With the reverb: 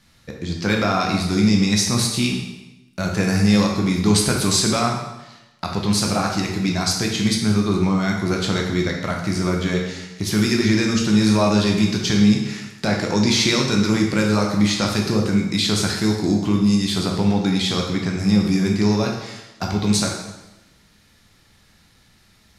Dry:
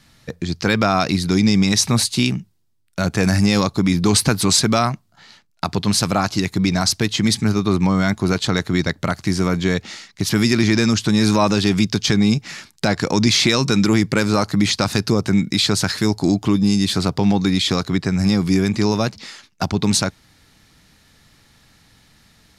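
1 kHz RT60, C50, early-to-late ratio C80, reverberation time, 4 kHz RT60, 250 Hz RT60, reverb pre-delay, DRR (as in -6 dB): 1.0 s, 3.5 dB, 6.5 dB, 1.0 s, 0.95 s, 1.1 s, 5 ms, -0.5 dB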